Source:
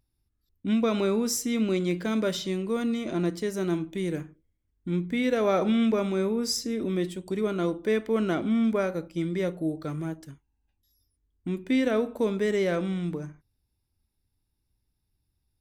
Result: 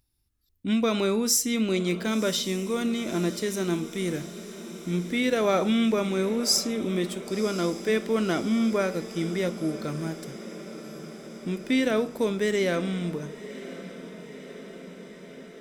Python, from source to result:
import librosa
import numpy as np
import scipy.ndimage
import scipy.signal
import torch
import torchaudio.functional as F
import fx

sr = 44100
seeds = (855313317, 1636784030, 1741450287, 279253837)

p1 = fx.high_shelf(x, sr, hz=2200.0, db=7.5)
y = p1 + fx.echo_diffused(p1, sr, ms=1053, feedback_pct=70, wet_db=-15, dry=0)